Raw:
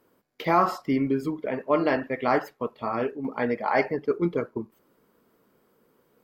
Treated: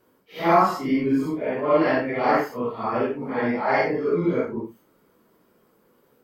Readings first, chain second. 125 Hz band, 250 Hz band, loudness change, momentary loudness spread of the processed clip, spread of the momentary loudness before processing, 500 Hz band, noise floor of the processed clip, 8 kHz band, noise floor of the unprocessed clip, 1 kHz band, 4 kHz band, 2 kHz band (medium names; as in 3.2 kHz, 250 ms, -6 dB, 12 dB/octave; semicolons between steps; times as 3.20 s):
+2.5 dB, +3.5 dB, +3.5 dB, 8 LU, 10 LU, +3.5 dB, -63 dBFS, no reading, -67 dBFS, +4.0 dB, +3.5 dB, +3.5 dB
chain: phase randomisation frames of 200 ms; trim +3.5 dB